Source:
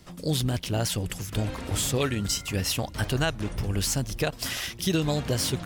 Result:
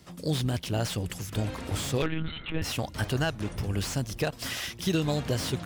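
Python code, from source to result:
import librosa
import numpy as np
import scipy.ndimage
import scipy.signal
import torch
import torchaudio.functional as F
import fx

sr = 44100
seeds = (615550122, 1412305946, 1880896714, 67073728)

y = scipy.signal.sosfilt(scipy.signal.butter(2, 52.0, 'highpass', fs=sr, output='sos'), x)
y = fx.lpc_monotone(y, sr, seeds[0], pitch_hz=160.0, order=10, at=(2.02, 2.62))
y = fx.slew_limit(y, sr, full_power_hz=150.0)
y = y * librosa.db_to_amplitude(-1.5)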